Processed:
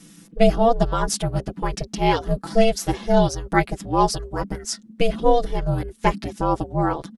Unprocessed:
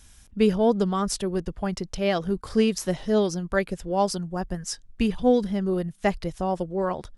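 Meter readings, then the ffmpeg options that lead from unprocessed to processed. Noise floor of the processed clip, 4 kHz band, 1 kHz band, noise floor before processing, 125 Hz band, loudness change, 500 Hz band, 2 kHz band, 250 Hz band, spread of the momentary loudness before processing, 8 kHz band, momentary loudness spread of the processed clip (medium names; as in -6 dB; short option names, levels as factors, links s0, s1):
-50 dBFS, +4.0 dB, +8.0 dB, -53 dBFS, +6.0 dB, +3.5 dB, +3.0 dB, +4.5 dB, 0.0 dB, 9 LU, +4.0 dB, 9 LU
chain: -af "aeval=exprs='val(0)*sin(2*PI*230*n/s)':c=same,aecho=1:1:6:0.93,volume=1.68"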